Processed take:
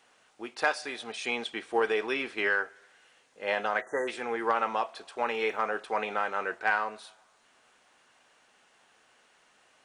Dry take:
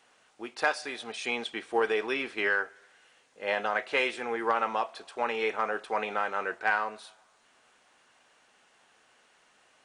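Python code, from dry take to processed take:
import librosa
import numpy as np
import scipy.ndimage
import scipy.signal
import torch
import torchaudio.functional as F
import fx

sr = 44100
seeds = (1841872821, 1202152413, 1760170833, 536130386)

y = fx.spec_erase(x, sr, start_s=3.81, length_s=0.27, low_hz=2000.0, high_hz=5800.0)
y = fx.quant_dither(y, sr, seeds[0], bits=12, dither='none', at=(5.19, 5.65))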